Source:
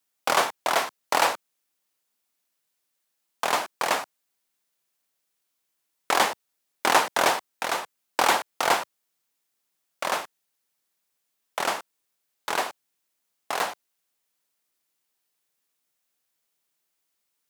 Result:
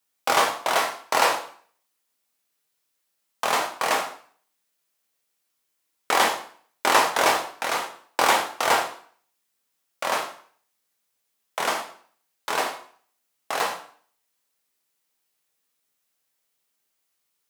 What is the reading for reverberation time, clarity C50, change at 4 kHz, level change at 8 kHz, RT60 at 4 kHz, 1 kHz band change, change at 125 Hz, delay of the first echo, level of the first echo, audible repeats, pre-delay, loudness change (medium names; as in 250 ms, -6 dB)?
0.50 s, 9.0 dB, +2.0 dB, +2.0 dB, 0.45 s, +2.0 dB, +1.0 dB, no echo, no echo, no echo, 5 ms, +2.0 dB